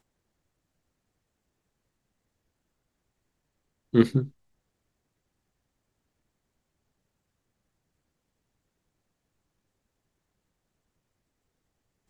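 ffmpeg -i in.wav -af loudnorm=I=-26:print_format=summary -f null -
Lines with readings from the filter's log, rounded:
Input Integrated:    -24.5 LUFS
Input True Peak:      -3.9 dBTP
Input LRA:             3.3 LU
Input Threshold:     -35.1 LUFS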